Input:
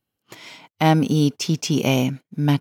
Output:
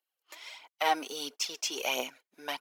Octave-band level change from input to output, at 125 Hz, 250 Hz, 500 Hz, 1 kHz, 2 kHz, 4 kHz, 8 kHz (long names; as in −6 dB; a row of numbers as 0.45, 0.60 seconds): below −40 dB, −26.0 dB, −12.0 dB, −7.0 dB, −5.5 dB, −5.0 dB, −5.0 dB